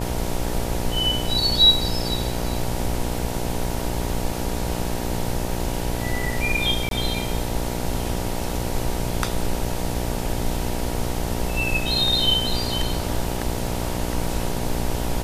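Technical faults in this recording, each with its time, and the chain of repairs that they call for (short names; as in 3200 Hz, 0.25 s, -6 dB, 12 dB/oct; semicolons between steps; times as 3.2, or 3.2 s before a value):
buzz 60 Hz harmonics 16 -28 dBFS
6.89–6.91 gap 22 ms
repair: de-hum 60 Hz, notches 16; interpolate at 6.89, 22 ms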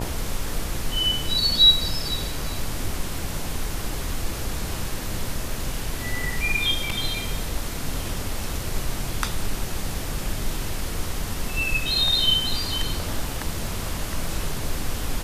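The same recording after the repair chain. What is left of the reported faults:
none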